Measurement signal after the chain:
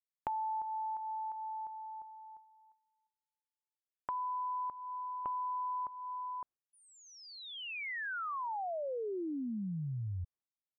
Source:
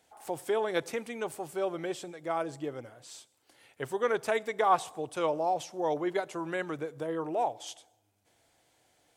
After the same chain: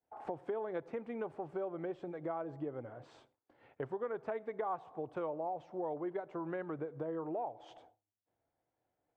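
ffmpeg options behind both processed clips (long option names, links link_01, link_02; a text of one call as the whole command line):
ffmpeg -i in.wav -af "agate=range=-33dB:threshold=-56dB:ratio=3:detection=peak,lowpass=1200,acompressor=threshold=-44dB:ratio=4,volume=5.5dB" out.wav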